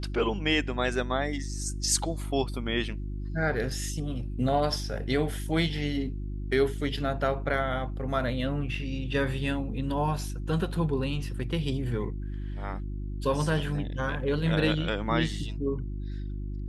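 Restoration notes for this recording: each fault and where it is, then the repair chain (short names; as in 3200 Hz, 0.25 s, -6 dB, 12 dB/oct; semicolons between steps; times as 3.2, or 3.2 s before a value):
hum 50 Hz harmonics 7 -34 dBFS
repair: de-hum 50 Hz, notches 7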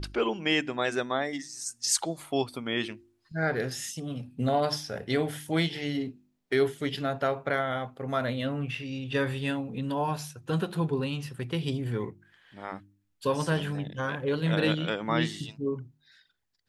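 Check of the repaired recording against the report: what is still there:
none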